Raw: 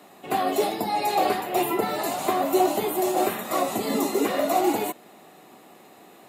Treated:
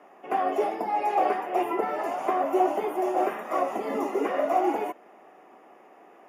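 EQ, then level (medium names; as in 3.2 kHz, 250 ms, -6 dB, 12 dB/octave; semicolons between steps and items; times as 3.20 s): boxcar filter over 11 samples; high-pass 370 Hz 12 dB/octave; 0.0 dB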